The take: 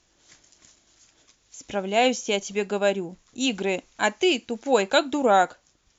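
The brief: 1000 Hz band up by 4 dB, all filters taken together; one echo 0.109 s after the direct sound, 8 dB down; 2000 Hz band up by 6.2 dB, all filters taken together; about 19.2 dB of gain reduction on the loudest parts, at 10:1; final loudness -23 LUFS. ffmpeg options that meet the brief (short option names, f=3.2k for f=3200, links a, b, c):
-af "equalizer=f=1k:t=o:g=4.5,equalizer=f=2k:t=o:g=7,acompressor=threshold=-30dB:ratio=10,aecho=1:1:109:0.398,volume=11.5dB"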